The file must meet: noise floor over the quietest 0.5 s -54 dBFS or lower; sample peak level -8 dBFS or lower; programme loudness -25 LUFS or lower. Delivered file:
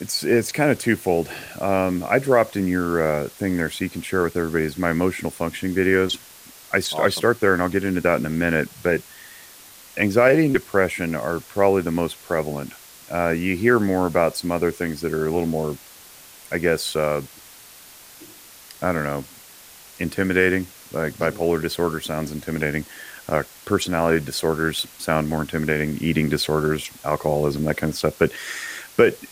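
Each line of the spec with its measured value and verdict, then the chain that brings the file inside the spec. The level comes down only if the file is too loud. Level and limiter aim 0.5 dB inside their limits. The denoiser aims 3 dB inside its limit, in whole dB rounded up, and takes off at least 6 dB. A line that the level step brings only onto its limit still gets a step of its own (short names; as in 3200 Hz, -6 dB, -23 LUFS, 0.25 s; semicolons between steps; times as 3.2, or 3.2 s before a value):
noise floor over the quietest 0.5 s -45 dBFS: fail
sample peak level -4.0 dBFS: fail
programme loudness -22.0 LUFS: fail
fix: denoiser 9 dB, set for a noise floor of -45 dBFS; gain -3.5 dB; limiter -8.5 dBFS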